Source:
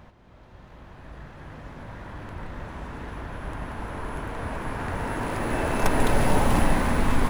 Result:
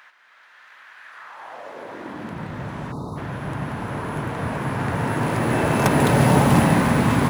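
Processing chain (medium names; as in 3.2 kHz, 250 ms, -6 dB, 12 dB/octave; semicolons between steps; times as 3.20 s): high-pass sweep 1.6 kHz -> 130 Hz, 1.07–2.50 s; spectral selection erased 2.92–3.17 s, 1.3–3.6 kHz; harmony voices +3 st -15 dB; trim +5 dB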